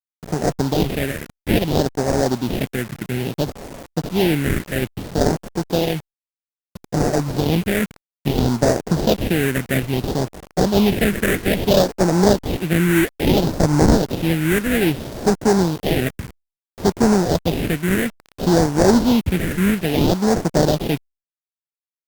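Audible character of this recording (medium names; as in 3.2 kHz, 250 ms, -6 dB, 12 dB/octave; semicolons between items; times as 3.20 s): aliases and images of a low sample rate 1.2 kHz, jitter 20%; phasing stages 4, 0.6 Hz, lowest notch 790–3000 Hz; a quantiser's noise floor 6-bit, dither none; Opus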